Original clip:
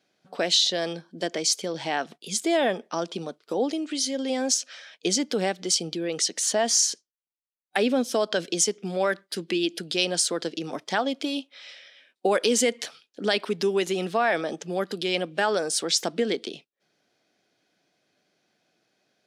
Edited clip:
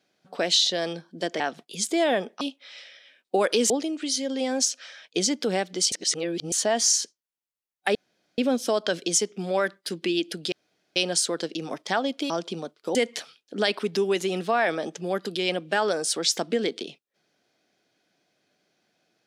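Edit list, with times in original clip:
1.40–1.93 s: delete
2.94–3.59 s: swap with 11.32–12.61 s
5.81–6.41 s: reverse
7.84 s: insert room tone 0.43 s
9.98 s: insert room tone 0.44 s

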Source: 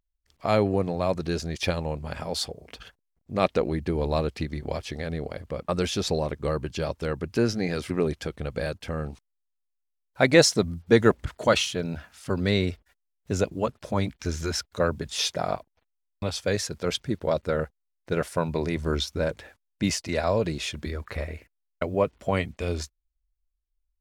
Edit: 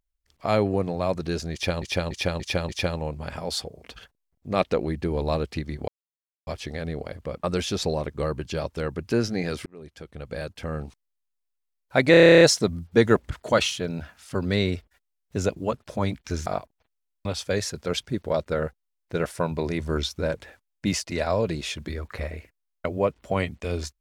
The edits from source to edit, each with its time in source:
1.53–1.82 s: loop, 5 plays
4.72 s: insert silence 0.59 s
7.91–8.98 s: fade in
10.36 s: stutter 0.03 s, 11 plays
14.41–15.43 s: delete

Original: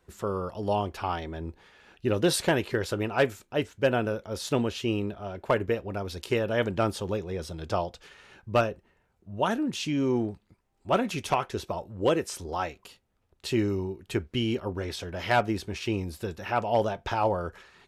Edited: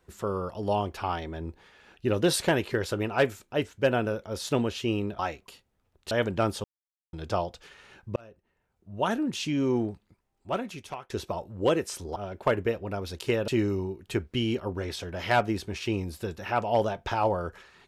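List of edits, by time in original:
5.19–6.51 s: swap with 12.56–13.48 s
7.04–7.53 s: mute
8.56–9.54 s: fade in
10.28–11.50 s: fade out, to -17.5 dB

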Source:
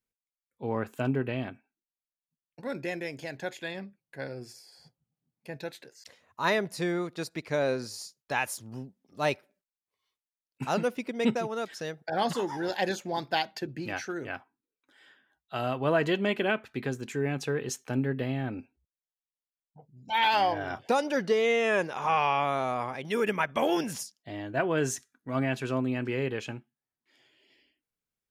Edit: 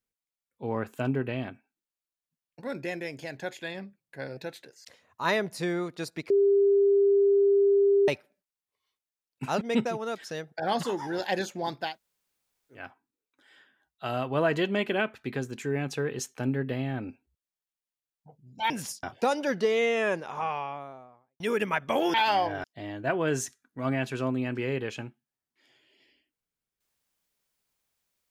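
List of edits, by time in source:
4.37–5.56 s: delete
7.49–9.27 s: bleep 399 Hz -18 dBFS
10.80–11.11 s: delete
13.37–14.31 s: room tone, crossfade 0.24 s
20.20–20.70 s: swap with 23.81–24.14 s
21.43–23.07 s: studio fade out

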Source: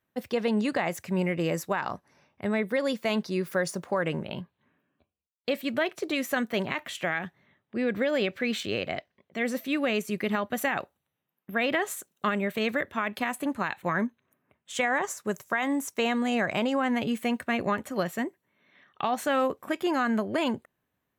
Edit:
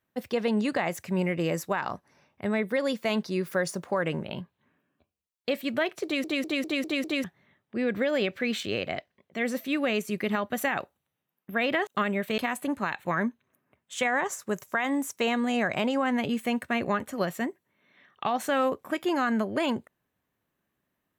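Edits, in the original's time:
6.04 s: stutter in place 0.20 s, 6 plays
11.87–12.14 s: delete
12.65–13.16 s: delete

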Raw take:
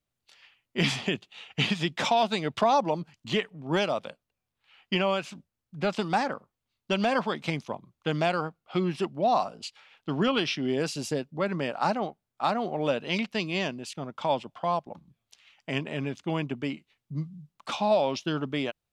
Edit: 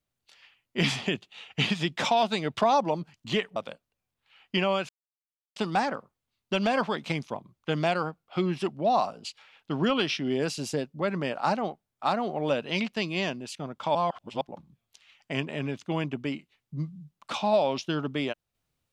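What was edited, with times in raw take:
3.56–3.94 s: delete
5.27–5.94 s: mute
14.33–14.79 s: reverse

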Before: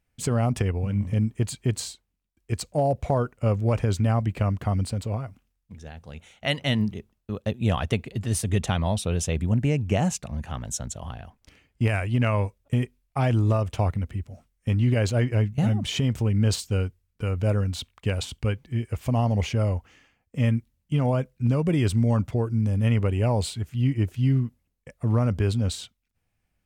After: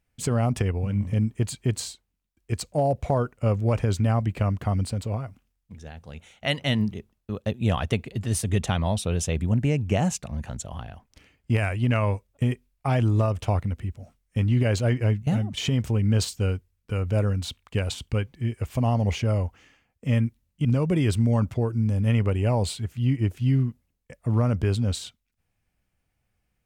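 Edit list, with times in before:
10.49–10.80 s: delete
15.59–15.88 s: fade out, to -8.5 dB
20.96–21.42 s: delete

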